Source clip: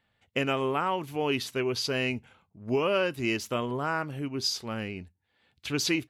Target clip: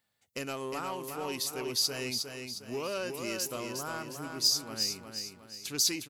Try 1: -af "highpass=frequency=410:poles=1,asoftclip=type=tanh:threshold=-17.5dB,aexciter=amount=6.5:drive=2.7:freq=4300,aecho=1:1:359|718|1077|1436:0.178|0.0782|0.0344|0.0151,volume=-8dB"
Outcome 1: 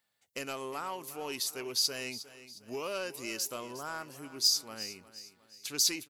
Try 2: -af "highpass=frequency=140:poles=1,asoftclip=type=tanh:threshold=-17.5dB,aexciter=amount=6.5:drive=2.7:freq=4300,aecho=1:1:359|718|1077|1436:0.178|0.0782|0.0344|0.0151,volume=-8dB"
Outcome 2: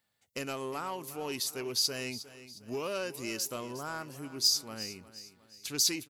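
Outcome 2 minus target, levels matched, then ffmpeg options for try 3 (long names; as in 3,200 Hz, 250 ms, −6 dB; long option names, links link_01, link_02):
echo-to-direct −9.5 dB
-af "highpass=frequency=140:poles=1,asoftclip=type=tanh:threshold=-17.5dB,aexciter=amount=6.5:drive=2.7:freq=4300,aecho=1:1:359|718|1077|1436|1795:0.531|0.234|0.103|0.0452|0.0199,volume=-8dB"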